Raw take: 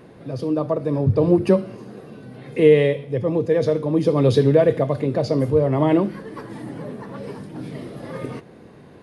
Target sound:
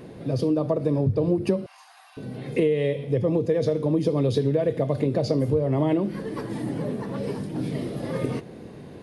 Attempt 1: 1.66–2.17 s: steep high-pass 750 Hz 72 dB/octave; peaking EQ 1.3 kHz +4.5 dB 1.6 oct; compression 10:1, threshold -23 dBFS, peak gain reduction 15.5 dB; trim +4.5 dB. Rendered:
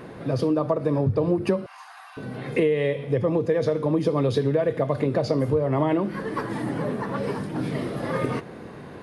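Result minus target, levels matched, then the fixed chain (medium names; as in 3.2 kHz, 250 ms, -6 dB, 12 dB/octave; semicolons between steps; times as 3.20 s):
1 kHz band +5.5 dB
1.66–2.17 s: steep high-pass 750 Hz 72 dB/octave; peaking EQ 1.3 kHz -6 dB 1.6 oct; compression 10:1, threshold -23 dBFS, peak gain reduction 14 dB; trim +4.5 dB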